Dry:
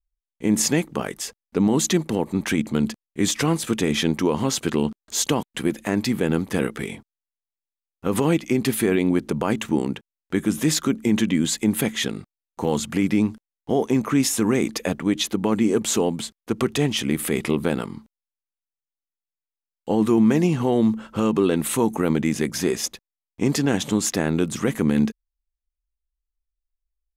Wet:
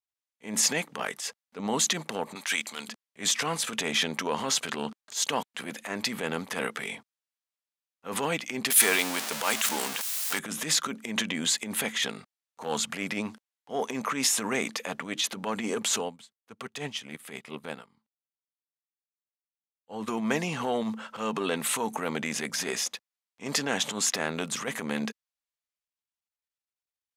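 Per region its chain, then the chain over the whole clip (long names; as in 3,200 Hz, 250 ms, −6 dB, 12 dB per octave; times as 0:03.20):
0:02.35–0:02.89: high-pass filter 1,100 Hz 6 dB per octave + high-shelf EQ 2,800 Hz +9 dB
0:08.70–0:10.39: converter with a step at zero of −27 dBFS + RIAA equalisation recording
0:15.96–0:20.08: parametric band 100 Hz +8 dB 1 octave + expander for the loud parts 2.5 to 1, over −32 dBFS
whole clip: parametric band 340 Hz −12 dB 0.34 octaves; transient designer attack −12 dB, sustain +2 dB; meter weighting curve A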